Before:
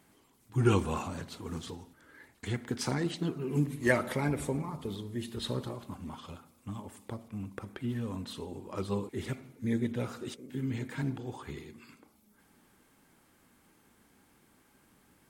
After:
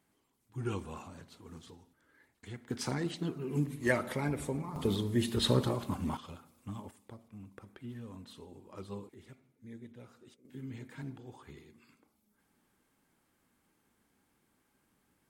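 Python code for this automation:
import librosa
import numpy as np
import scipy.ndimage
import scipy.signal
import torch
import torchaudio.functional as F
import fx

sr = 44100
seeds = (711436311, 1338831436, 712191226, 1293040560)

y = fx.gain(x, sr, db=fx.steps((0.0, -11.0), (2.7, -3.0), (4.76, 7.0), (6.17, -2.0), (6.91, -10.0), (9.14, -18.0), (10.45, -9.5)))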